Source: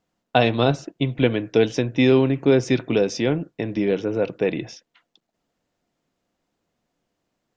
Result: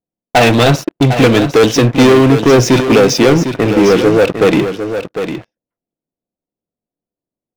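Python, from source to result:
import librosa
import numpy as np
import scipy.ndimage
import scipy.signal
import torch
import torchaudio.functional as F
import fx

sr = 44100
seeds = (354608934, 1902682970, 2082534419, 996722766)

y = fx.env_lowpass(x, sr, base_hz=570.0, full_db=-15.5)
y = fx.low_shelf(y, sr, hz=190.0, db=-3.5)
y = fx.leveller(y, sr, passes=5)
y = y + 10.0 ** (-9.0 / 20.0) * np.pad(y, (int(753 * sr / 1000.0), 0))[:len(y)]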